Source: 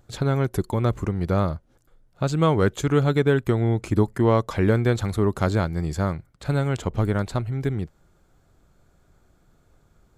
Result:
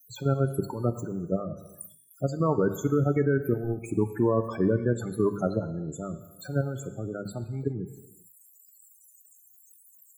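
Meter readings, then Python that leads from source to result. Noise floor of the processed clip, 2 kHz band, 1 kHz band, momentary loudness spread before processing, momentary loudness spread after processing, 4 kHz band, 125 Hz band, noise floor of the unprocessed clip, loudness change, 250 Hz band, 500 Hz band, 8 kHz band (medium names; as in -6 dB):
-58 dBFS, -9.0 dB, -7.5 dB, 7 LU, 13 LU, under -10 dB, -7.0 dB, -62 dBFS, -5.0 dB, -4.0 dB, -3.5 dB, -4.0 dB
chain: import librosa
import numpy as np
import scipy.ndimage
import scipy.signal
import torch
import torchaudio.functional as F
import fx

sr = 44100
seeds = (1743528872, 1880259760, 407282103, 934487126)

y = x + 0.5 * 10.0 ** (-23.5 / 20.0) * np.diff(np.sign(x), prepend=np.sign(x[:1]))
y = scipy.signal.sosfilt(scipy.signal.butter(4, 120.0, 'highpass', fs=sr, output='sos'), y)
y = fx.high_shelf(y, sr, hz=4800.0, db=2.5)
y = fx.hum_notches(y, sr, base_hz=50, count=4)
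y = fx.level_steps(y, sr, step_db=11)
y = fx.spec_topn(y, sr, count=16)
y = fx.rev_gated(y, sr, seeds[0], gate_ms=440, shape='falling', drr_db=10.0)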